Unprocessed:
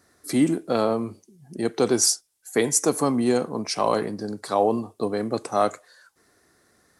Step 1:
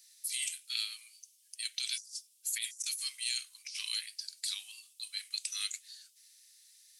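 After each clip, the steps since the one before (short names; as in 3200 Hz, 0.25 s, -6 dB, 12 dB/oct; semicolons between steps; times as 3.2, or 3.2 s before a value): steep high-pass 2600 Hz 36 dB/oct; negative-ratio compressor -40 dBFS, ratio -1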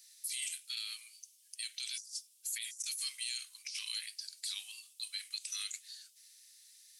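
limiter -29 dBFS, peak gain reduction 11 dB; gain +1 dB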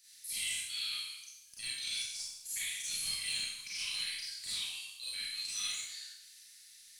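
soft clip -30.5 dBFS, distortion -19 dB; tone controls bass +14 dB, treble -5 dB; Schroeder reverb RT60 0.87 s, combs from 31 ms, DRR -8.5 dB; gain -1.5 dB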